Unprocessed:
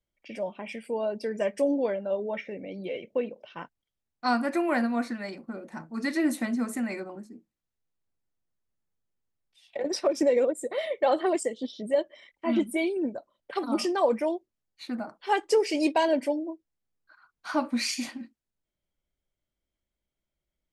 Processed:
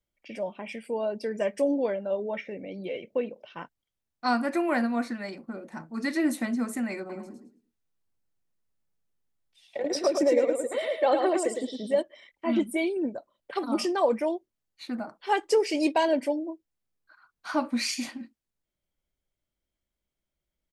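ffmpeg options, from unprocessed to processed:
-filter_complex "[0:a]asplit=3[a][b][c];[a]afade=t=out:st=7.09:d=0.02[d];[b]aecho=1:1:108|216|324:0.562|0.135|0.0324,afade=t=in:st=7.09:d=0.02,afade=t=out:st=12.01:d=0.02[e];[c]afade=t=in:st=12.01:d=0.02[f];[d][e][f]amix=inputs=3:normalize=0"

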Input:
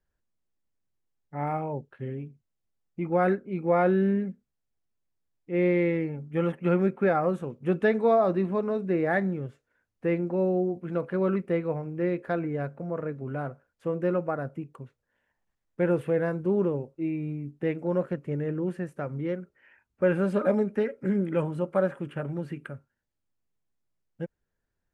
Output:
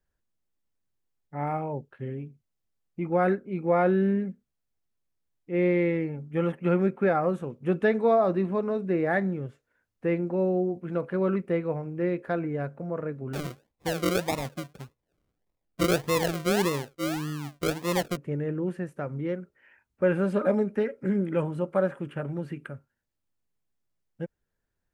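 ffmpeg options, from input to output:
-filter_complex "[0:a]asettb=1/sr,asplit=3[a][b][c];[a]atrim=end=13.334[d];[b]atrim=start=13.33:end=18.17,asetpts=PTS-STARTPTS,afade=t=in:d=0.004:c=qsin,afade=t=out:st=4.836:d=0.004:c=qsin,acrusher=samples=40:mix=1:aa=0.000001:lfo=1:lforange=24:lforate=1.7[e];[c]atrim=start=18.166[f];[d][e]acrossfade=d=0.004:c1=hsin:c2=qsin[g];[g][f]acrossfade=d=0.004:c1=qsin:c2=hsin"

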